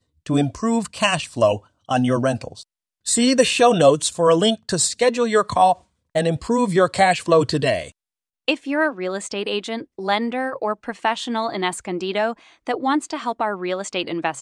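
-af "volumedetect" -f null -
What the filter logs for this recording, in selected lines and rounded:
mean_volume: -20.7 dB
max_volume: -2.2 dB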